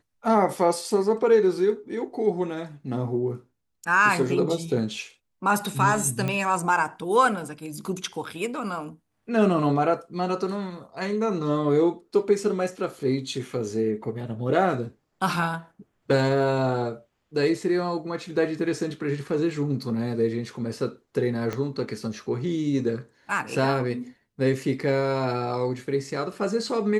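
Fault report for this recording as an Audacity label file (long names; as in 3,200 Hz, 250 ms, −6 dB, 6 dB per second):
6.280000	6.280000	click −15 dBFS
21.530000	21.530000	click −16 dBFS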